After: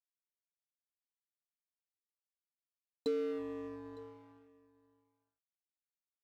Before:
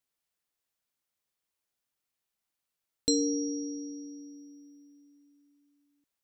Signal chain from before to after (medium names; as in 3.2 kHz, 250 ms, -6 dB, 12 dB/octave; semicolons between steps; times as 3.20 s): resonances exaggerated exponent 3; Doppler pass-by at 1.85 s, 11 m/s, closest 9.9 m; in parallel at +1 dB: compression, threshold -45 dBFS, peak gain reduction 16.5 dB; on the sum: band-pass sweep 1.3 kHz -> 410 Hz, 2.43–4.44 s; crossover distortion -56 dBFS; on a send: delay 908 ms -22 dB; on the sum: trim +10.5 dB